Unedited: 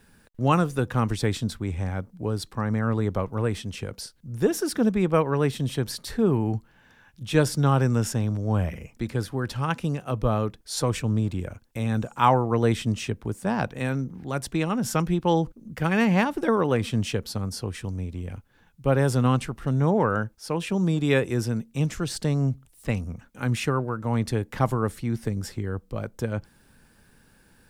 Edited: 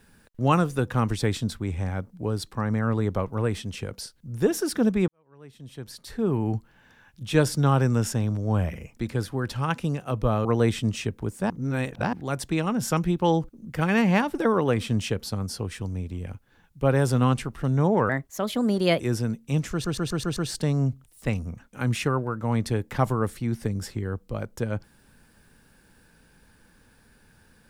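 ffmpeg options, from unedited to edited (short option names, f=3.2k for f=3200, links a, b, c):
-filter_complex "[0:a]asplit=12[a][b][c][d][e][f][g][h][i][j][k][l];[a]atrim=end=5.08,asetpts=PTS-STARTPTS,afade=t=out:st=5.076:d=0.004:c=hsin[m];[b]atrim=start=5.08:end=10.452,asetpts=PTS-STARTPTS,afade=t=in:d=1.43:c=qua[n];[c]atrim=start=12.478:end=13.532[o];[d]atrim=start=13.528:end=14.162,asetpts=PTS-STARTPTS,areverse[p];[e]atrim=start=14.158:end=20.124[q];[f]atrim=start=20.12:end=21.26,asetpts=PTS-STARTPTS,asetrate=55566,aresample=44100[r];[g]atrim=start=21.256:end=22.112[s];[h]atrim=start=21.978:end=22.112[t];[i]atrim=start=21.978:end=22.112[u];[j]atrim=start=21.978:end=22.112[v];[k]atrim=start=21.978:end=22.112[w];[l]atrim=start=21.978[x];[m][n]concat=n=2:v=0:a=1[y];[y][o]acrossfade=d=0.004:c1=hsin:c2=hsin[z];[z][p]acrossfade=d=0.004:c1=hsin:c2=hsin[aa];[aa][q]acrossfade=d=0.004:c1=hsin:c2=hsin[ab];[ab][r]acrossfade=d=0.004:c1=hsin:c2=hsin[ac];[ac][s]acrossfade=d=0.004:c1=hsin:c2=hsin[ad];[ad][t]acrossfade=d=0.004:c1=hsin:c2=hsin[ae];[ae][u]acrossfade=d=0.004:c1=hsin:c2=hsin[af];[af][v]acrossfade=d=0.004:c1=hsin:c2=hsin[ag];[ag][w]acrossfade=d=0.004:c1=hsin:c2=hsin[ah];[ah][x]acrossfade=d=0.004:c1=hsin:c2=hsin"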